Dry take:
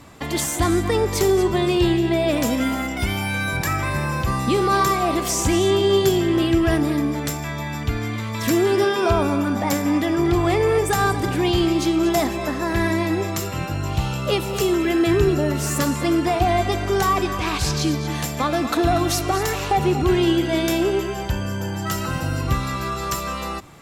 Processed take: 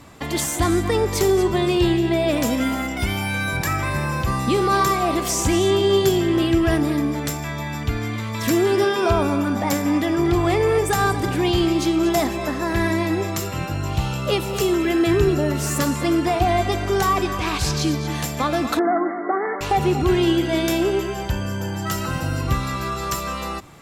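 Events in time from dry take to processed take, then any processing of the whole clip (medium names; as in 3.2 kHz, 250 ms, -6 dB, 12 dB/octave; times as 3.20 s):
18.79–19.61 s: brick-wall FIR band-pass 190–2200 Hz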